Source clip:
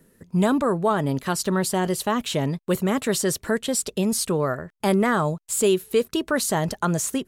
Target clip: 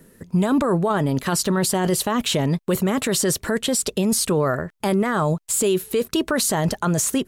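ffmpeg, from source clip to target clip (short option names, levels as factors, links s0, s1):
-af "alimiter=limit=0.106:level=0:latency=1:release=14,volume=2.24"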